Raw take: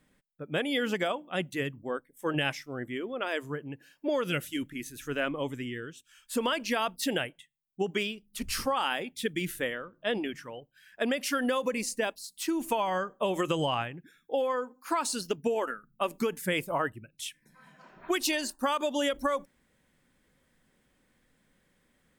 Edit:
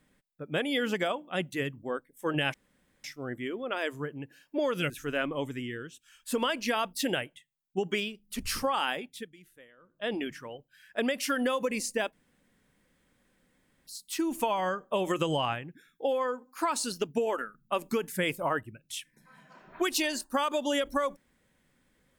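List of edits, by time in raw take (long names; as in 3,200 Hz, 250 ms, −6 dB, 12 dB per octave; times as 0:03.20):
0:02.54: splice in room tone 0.50 s
0:04.40–0:04.93: remove
0:08.94–0:10.23: duck −23 dB, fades 0.43 s
0:12.16: splice in room tone 1.74 s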